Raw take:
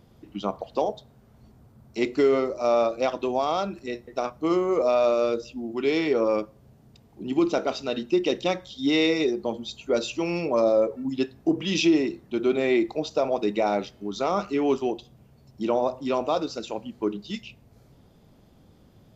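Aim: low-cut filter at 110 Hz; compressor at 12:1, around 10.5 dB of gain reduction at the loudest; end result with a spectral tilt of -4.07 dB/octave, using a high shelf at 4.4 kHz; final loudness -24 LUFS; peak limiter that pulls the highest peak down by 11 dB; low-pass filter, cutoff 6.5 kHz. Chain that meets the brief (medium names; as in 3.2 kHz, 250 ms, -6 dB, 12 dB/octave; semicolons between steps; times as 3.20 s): high-pass 110 Hz; low-pass 6.5 kHz; treble shelf 4.4 kHz -5 dB; compression 12:1, threshold -27 dBFS; trim +14 dB; peak limiter -14.5 dBFS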